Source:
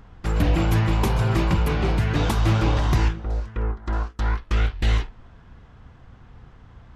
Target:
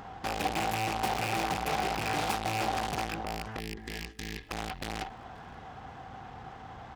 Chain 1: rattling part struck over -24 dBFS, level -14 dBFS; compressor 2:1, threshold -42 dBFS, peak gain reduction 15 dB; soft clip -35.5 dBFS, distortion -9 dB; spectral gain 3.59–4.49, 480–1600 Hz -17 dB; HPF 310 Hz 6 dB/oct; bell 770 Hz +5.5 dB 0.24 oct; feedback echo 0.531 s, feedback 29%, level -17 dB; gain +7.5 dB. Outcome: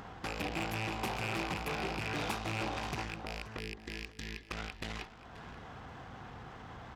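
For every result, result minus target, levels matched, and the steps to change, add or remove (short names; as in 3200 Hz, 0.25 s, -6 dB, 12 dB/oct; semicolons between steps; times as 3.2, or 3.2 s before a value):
compressor: peak gain reduction +15 dB; echo-to-direct +10 dB; 1000 Hz band -3.0 dB
remove: compressor 2:1, threshold -42 dBFS, peak gain reduction 15 dB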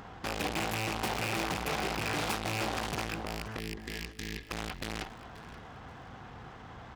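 echo-to-direct +10 dB; 1000 Hz band -4.0 dB
change: feedback echo 0.531 s, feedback 29%, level -27 dB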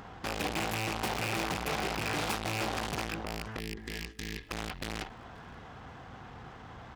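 1000 Hz band -4.0 dB
change: bell 770 Hz +14.5 dB 0.24 oct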